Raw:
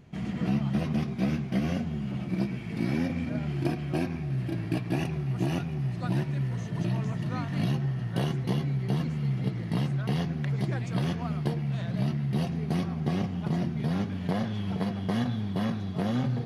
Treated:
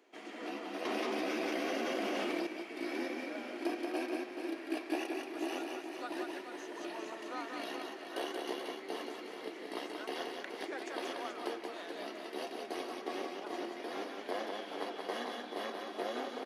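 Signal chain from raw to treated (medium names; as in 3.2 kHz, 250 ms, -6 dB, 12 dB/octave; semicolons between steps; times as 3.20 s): steep high-pass 300 Hz 48 dB/octave; reverse bouncing-ball echo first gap 180 ms, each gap 1.4×, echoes 5; 0.85–2.47 s: level flattener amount 100%; trim -4 dB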